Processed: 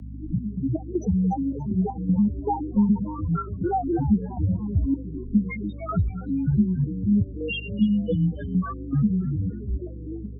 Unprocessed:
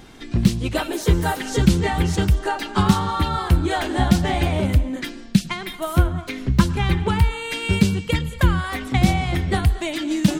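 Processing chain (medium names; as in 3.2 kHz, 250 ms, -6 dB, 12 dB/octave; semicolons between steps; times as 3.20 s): fade out at the end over 2.20 s; peaking EQ 180 Hz +7.5 dB 0.88 oct; hum notches 60/120/180/240 Hz; compression 5:1, threshold -19 dBFS, peak gain reduction 14 dB; loudest bins only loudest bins 1; trance gate "xx.x.xxx.x.x.x" 79 bpm -12 dB; hum 50 Hz, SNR 12 dB; frequency shift +13 Hz; frequency-shifting echo 288 ms, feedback 40%, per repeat +100 Hz, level -16.5 dB; trim +9 dB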